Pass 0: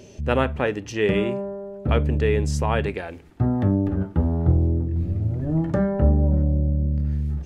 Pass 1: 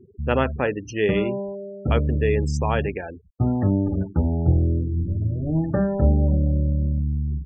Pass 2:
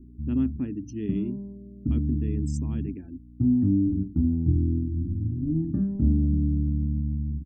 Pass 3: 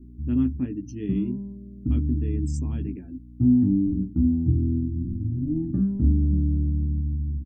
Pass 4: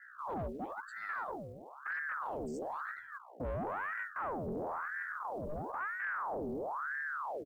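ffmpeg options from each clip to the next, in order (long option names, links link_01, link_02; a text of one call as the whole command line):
ffmpeg -i in.wav -af "afftfilt=real='re*gte(hypot(re,im),0.0282)':imag='im*gte(hypot(re,im),0.0282)':win_size=1024:overlap=0.75" out.wav
ffmpeg -i in.wav -af "aeval=exprs='val(0)+0.00708*(sin(2*PI*60*n/s)+sin(2*PI*2*60*n/s)/2+sin(2*PI*3*60*n/s)/3+sin(2*PI*4*60*n/s)/4+sin(2*PI*5*60*n/s)/5)':channel_layout=same,firequalizer=gain_entry='entry(180,0);entry(270,10);entry(490,-27);entry(1100,-22);entry(1600,-24);entry(8300,4)':delay=0.05:min_phase=1,volume=-4.5dB" out.wav
ffmpeg -i in.wav -filter_complex "[0:a]asplit=2[link_01][link_02];[link_02]adelay=16,volume=-5.5dB[link_03];[link_01][link_03]amix=inputs=2:normalize=0" out.wav
ffmpeg -i in.wav -af "acrusher=bits=8:mode=log:mix=0:aa=0.000001,asoftclip=type=tanh:threshold=-25dB,aeval=exprs='val(0)*sin(2*PI*1000*n/s+1000*0.7/1*sin(2*PI*1*n/s))':channel_layout=same,volume=-7.5dB" out.wav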